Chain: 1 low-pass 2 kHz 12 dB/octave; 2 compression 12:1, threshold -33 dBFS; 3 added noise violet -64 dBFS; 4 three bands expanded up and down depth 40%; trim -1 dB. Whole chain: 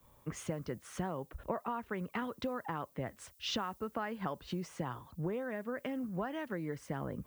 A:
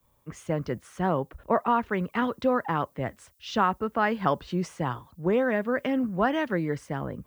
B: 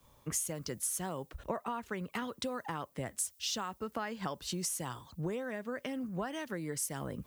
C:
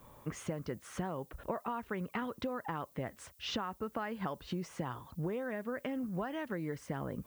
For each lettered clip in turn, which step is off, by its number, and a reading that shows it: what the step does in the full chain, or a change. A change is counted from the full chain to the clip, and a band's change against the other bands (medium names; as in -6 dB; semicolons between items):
2, mean gain reduction 9.0 dB; 1, 8 kHz band +16.0 dB; 4, 4 kHz band -2.0 dB